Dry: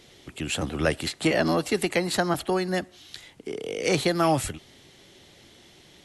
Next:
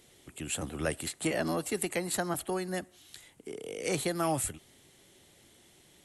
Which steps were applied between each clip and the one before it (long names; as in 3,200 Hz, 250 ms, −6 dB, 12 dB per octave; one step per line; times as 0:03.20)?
high shelf with overshoot 6,700 Hz +8 dB, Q 1.5
level −8 dB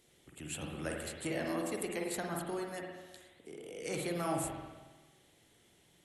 spring reverb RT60 1.3 s, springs 46/52 ms, chirp 70 ms, DRR 0 dB
level −8 dB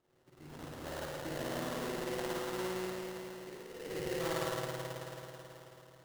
loudspeaker in its box 110–3,200 Hz, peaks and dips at 220 Hz −8 dB, 480 Hz −6 dB, 690 Hz −4 dB, 2,300 Hz −4 dB
spring reverb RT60 3.9 s, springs 54 ms, chirp 30 ms, DRR −7.5 dB
sample-rate reduction 2,400 Hz, jitter 20%
level −4.5 dB